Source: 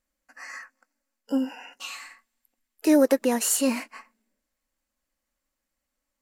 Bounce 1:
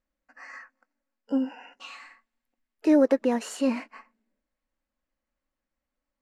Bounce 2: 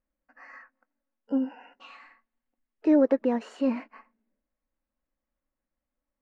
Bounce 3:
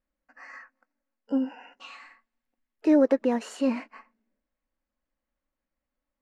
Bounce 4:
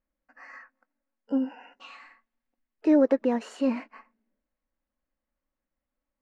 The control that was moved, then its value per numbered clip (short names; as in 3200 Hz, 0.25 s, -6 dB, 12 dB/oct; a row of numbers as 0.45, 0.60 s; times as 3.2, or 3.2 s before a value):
tape spacing loss, at 10 kHz: 21, 46, 29, 37 dB